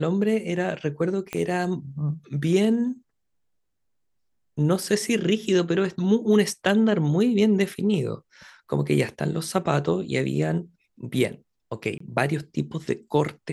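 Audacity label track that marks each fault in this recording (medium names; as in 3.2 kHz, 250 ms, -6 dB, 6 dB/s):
1.330000	1.330000	pop -15 dBFS
11.980000	12.000000	dropout 24 ms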